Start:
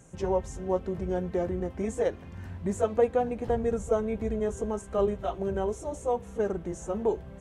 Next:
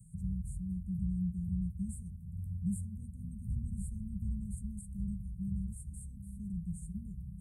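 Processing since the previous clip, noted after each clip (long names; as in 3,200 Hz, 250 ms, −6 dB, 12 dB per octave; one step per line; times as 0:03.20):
Chebyshev band-stop filter 190–8,600 Hz, order 5
level +1.5 dB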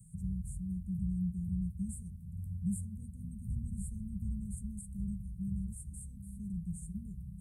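low-shelf EQ 250 Hz −4.5 dB
level +3 dB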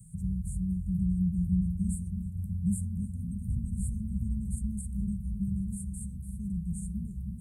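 feedback echo with a low-pass in the loop 320 ms, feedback 57%, low-pass 960 Hz, level −7 dB
level +5 dB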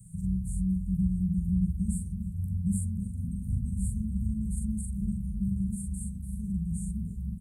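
double-tracking delay 42 ms −3 dB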